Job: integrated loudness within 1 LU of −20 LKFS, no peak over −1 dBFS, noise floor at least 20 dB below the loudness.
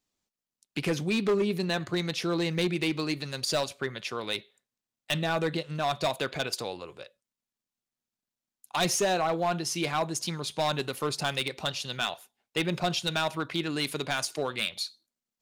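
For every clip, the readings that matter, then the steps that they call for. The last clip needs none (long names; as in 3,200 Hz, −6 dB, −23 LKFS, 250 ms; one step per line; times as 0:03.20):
share of clipped samples 0.9%; peaks flattened at −21.0 dBFS; integrated loudness −30.0 LKFS; sample peak −21.0 dBFS; target loudness −20.0 LKFS
→ clipped peaks rebuilt −21 dBFS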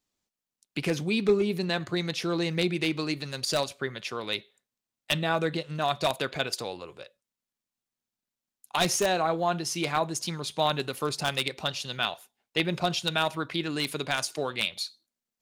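share of clipped samples 0.0%; integrated loudness −29.0 LKFS; sample peak −12.0 dBFS; target loudness −20.0 LKFS
→ level +9 dB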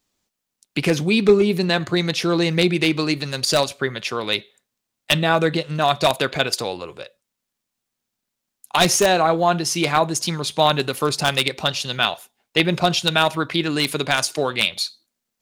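integrated loudness −20.0 LKFS; sample peak −3.0 dBFS; background noise floor −81 dBFS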